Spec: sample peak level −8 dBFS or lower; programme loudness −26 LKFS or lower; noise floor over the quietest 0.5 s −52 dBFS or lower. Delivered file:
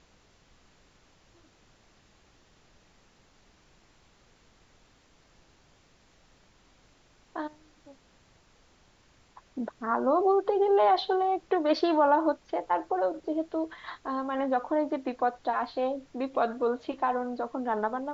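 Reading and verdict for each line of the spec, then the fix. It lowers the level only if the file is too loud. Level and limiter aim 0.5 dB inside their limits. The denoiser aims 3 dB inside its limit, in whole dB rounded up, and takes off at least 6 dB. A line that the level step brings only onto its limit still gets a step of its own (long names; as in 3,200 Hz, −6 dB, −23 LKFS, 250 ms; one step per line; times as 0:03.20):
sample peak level −13.0 dBFS: in spec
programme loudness −28.5 LKFS: in spec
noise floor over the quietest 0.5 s −62 dBFS: in spec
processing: no processing needed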